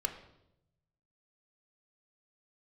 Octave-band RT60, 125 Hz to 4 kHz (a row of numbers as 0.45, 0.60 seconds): 1.5, 1.1, 0.95, 0.75, 0.65, 0.70 seconds